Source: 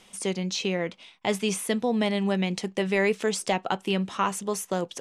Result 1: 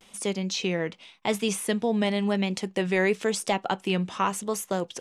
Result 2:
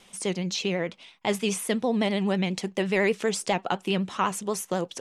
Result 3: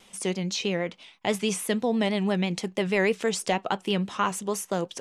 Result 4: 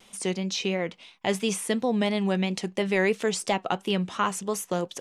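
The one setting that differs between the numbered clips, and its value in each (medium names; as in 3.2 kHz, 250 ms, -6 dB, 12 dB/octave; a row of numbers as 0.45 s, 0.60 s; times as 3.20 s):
vibrato, rate: 0.93 Hz, 12 Hz, 6.2 Hz, 2.9 Hz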